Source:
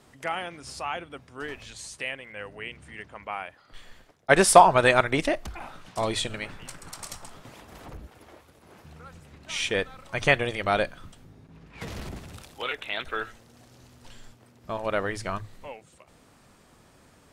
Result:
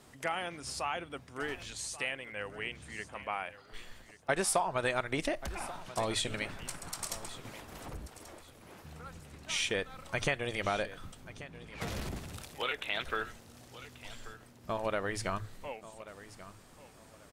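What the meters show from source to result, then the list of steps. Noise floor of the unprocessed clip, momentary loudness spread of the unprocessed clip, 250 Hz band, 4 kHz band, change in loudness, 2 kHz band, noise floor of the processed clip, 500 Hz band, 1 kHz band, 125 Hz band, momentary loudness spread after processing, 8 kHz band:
−58 dBFS, 22 LU, −8.0 dB, −5.0 dB, −10.5 dB, −8.0 dB, −57 dBFS, −10.0 dB, −12.0 dB, −6.5 dB, 19 LU, −6.0 dB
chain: high-shelf EQ 6,100 Hz +4.5 dB
downward compressor 4 to 1, threshold −28 dBFS, peak gain reduction 17 dB
on a send: repeating echo 1,135 ms, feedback 26%, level −16 dB
on the sum: level −1.5 dB

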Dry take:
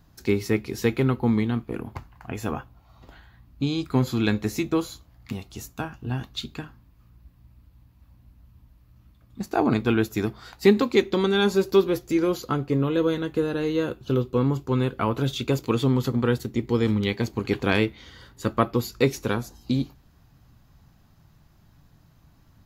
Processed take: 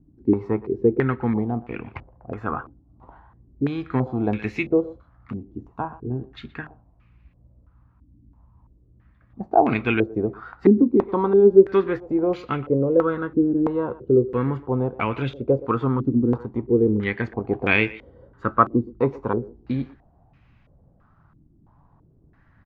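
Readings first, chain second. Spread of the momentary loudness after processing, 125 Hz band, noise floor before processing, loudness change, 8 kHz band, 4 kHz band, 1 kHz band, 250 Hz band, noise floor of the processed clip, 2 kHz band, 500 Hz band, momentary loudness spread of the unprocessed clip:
16 LU, −1.0 dB, −58 dBFS, +3.0 dB, below −25 dB, can't be measured, +5.0 dB, +2.0 dB, −58 dBFS, +2.5 dB, +4.0 dB, 14 LU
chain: far-end echo of a speakerphone 120 ms, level −17 dB
low-pass on a step sequencer 3 Hz 300–2,400 Hz
level −1.5 dB

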